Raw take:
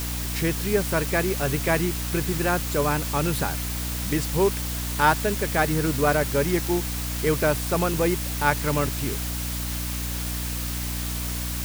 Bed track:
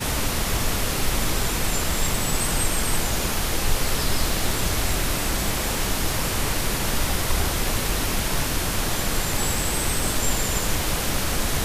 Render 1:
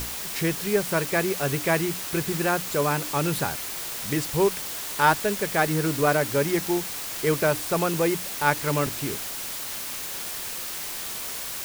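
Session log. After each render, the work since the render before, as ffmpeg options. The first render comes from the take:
-af "bandreject=f=60:t=h:w=6,bandreject=f=120:t=h:w=6,bandreject=f=180:t=h:w=6,bandreject=f=240:t=h:w=6,bandreject=f=300:t=h:w=6"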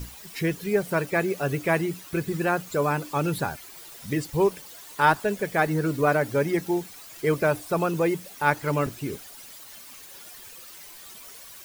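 -af "afftdn=nr=14:nf=-33"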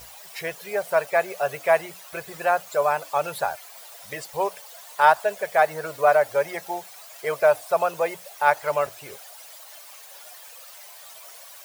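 -af "highpass=55,lowshelf=f=420:t=q:w=3:g=-14"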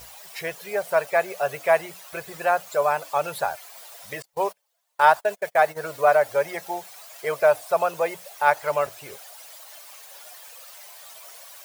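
-filter_complex "[0:a]asettb=1/sr,asplit=3[s0][s1][s2];[s0]atrim=end=4.224[s3];[s1]atrim=start=4.22:end=5.83,asetpts=PTS-STARTPTS,afade=t=in:d=0.004:c=qsin,afade=t=out:st=1.606:d=0.004:c=qsin,agate=range=0.0282:threshold=0.0178:ratio=16:release=100:detection=peak[s4];[s2]atrim=start=5.826[s5];[s3][s4]acrossfade=d=0.004:c1=hsin:c2=qsin[s6];[s6][s5]acrossfade=d=0.004:c1=qsin:c2=hsin"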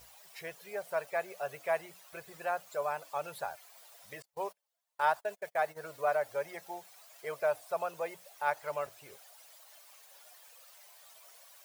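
-af "volume=0.237"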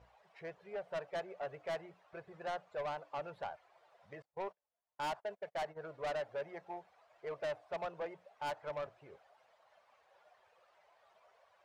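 -af "adynamicsmooth=sensitivity=1.5:basefreq=1500,asoftclip=type=tanh:threshold=0.0188"

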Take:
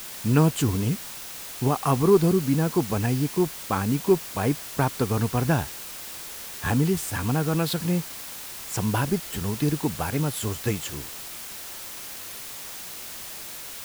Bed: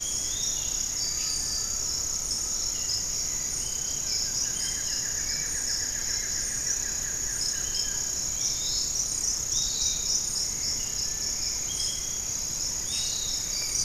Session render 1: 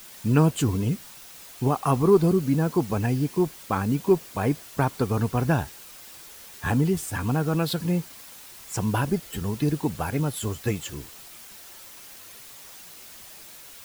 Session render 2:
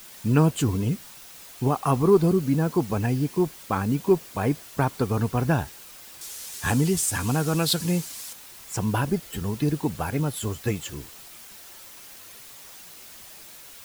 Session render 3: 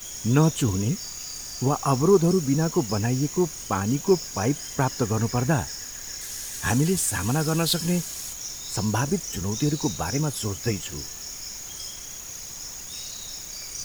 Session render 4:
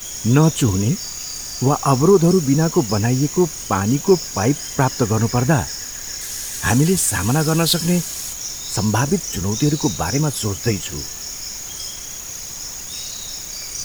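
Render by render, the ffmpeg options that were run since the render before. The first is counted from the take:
-af "afftdn=nr=8:nf=-38"
-filter_complex "[0:a]asettb=1/sr,asplit=3[s0][s1][s2];[s0]atrim=end=6.214[s3];[s1]atrim=start=6.21:end=8.33,asetpts=PTS-STARTPTS,afade=t=in:d=0.004:c=qsin,afade=t=out:st=2.116:d=0.004:c=qsin,equalizer=f=7700:w=0.44:g=11[s4];[s2]atrim=start=8.326[s5];[s3][s4]acrossfade=d=0.004:c1=hsin:c2=qsin[s6];[s6][s5]acrossfade=d=0.004:c1=qsin:c2=hsin"
-filter_complex "[1:a]volume=0.422[s0];[0:a][s0]amix=inputs=2:normalize=0"
-af "volume=2.11,alimiter=limit=0.708:level=0:latency=1"

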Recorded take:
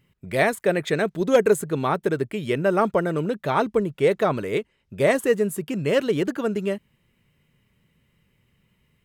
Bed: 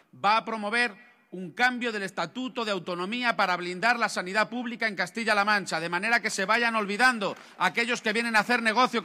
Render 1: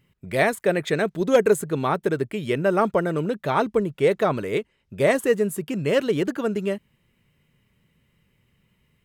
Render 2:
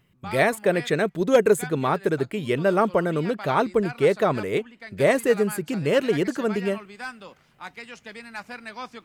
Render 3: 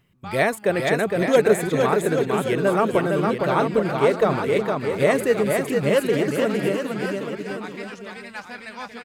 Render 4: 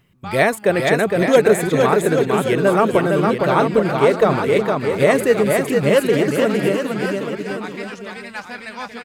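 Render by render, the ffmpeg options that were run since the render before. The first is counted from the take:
-af anull
-filter_complex "[1:a]volume=0.2[s0];[0:a][s0]amix=inputs=2:normalize=0"
-af "aecho=1:1:460|828|1122|1358|1546:0.631|0.398|0.251|0.158|0.1"
-af "volume=1.68,alimiter=limit=0.708:level=0:latency=1"

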